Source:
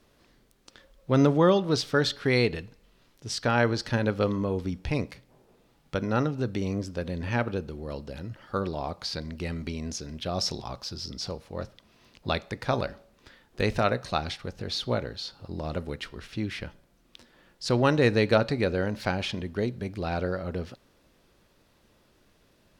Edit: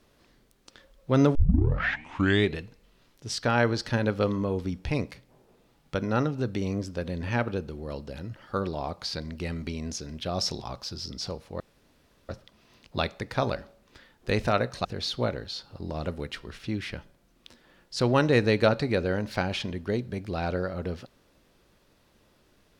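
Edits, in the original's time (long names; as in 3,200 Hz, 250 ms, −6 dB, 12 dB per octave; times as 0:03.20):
0:01.35: tape start 1.23 s
0:11.60: splice in room tone 0.69 s
0:14.16–0:14.54: remove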